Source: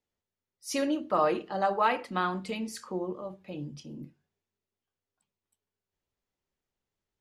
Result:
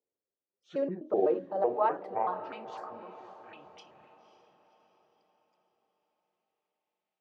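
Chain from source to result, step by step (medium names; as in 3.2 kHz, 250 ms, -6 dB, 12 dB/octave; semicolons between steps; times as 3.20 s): pitch shift switched off and on -8.5 st, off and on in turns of 126 ms; band-pass sweep 460 Hz -> 2.5 kHz, 1.27–3.80 s; echo that smears into a reverb 538 ms, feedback 46%, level -12.5 dB; trim +3.5 dB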